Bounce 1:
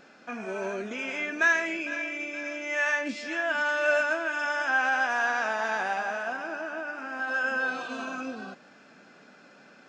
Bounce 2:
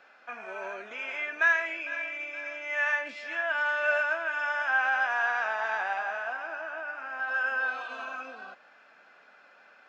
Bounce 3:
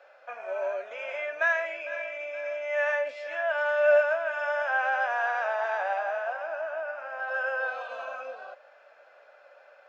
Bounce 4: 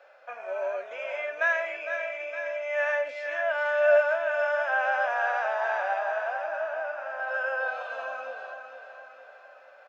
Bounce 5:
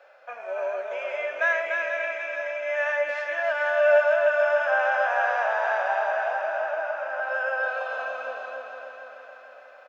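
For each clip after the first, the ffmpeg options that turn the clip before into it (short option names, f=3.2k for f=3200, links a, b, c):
-filter_complex "[0:a]acrossover=split=570 3400:gain=0.0891 1 0.2[a][b][c];[a][b][c]amix=inputs=3:normalize=0"
-af "highpass=f=560:t=q:w=6.3,volume=-3.5dB"
-af "aecho=1:1:459|918|1377|1836|2295|2754:0.355|0.188|0.0997|0.0528|0.028|0.0148"
-af "aecho=1:1:293|586|879|1172|1465|1758:0.562|0.27|0.13|0.0622|0.0299|0.0143,volume=1.5dB"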